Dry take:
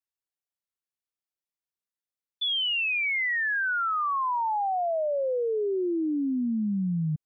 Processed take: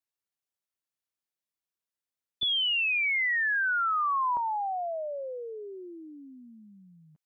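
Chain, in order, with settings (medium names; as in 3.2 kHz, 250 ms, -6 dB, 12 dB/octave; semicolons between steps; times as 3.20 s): high-pass 47 Hz 12 dB/octave, from 2.43 s 300 Hz, from 4.37 s 870 Hz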